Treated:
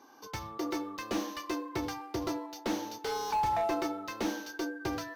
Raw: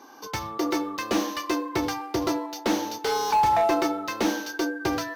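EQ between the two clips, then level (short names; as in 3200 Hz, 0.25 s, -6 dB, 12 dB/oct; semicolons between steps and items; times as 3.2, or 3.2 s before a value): low shelf 110 Hz +7 dB; -9.0 dB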